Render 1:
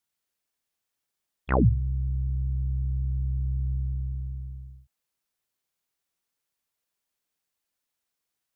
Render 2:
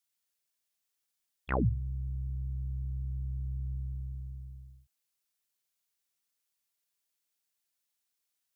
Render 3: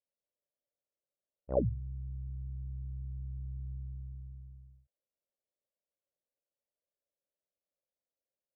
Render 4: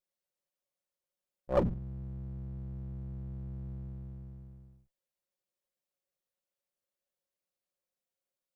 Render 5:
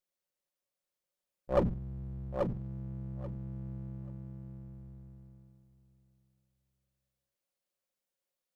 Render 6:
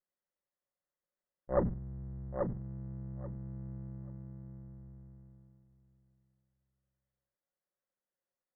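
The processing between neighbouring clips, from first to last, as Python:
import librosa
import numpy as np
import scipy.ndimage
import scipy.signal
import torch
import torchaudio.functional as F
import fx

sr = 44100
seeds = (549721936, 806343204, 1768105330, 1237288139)

y1 = fx.high_shelf(x, sr, hz=2100.0, db=9.5)
y1 = y1 * librosa.db_to_amplitude(-8.0)
y2 = fx.ladder_lowpass(y1, sr, hz=610.0, resonance_pct=75)
y2 = y2 * librosa.db_to_amplitude(7.0)
y3 = fx.lower_of_two(y2, sr, delay_ms=5.5)
y3 = y3 * librosa.db_to_amplitude(2.5)
y4 = fx.echo_feedback(y3, sr, ms=835, feedback_pct=17, wet_db=-5.0)
y5 = fx.brickwall_lowpass(y4, sr, high_hz=2100.0)
y5 = y5 * librosa.db_to_amplitude(-2.0)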